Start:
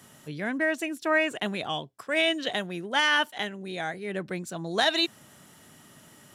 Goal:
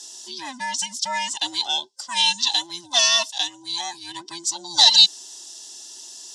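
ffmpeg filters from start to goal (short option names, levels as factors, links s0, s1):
-af "afftfilt=real='real(if(between(b,1,1008),(2*floor((b-1)/24)+1)*24-b,b),0)':imag='imag(if(between(b,1,1008),(2*floor((b-1)/24)+1)*24-b,b),0)*if(between(b,1,1008),-1,1)':win_size=2048:overlap=0.75,aexciter=amount=5.1:drive=9.5:freq=3200,highpass=420,equalizer=f=810:t=q:w=4:g=4,equalizer=f=1300:t=q:w=4:g=-9,equalizer=f=2400:t=q:w=4:g=-7,equalizer=f=5400:t=q:w=4:g=6,lowpass=f=7200:w=0.5412,lowpass=f=7200:w=1.3066,volume=0.891"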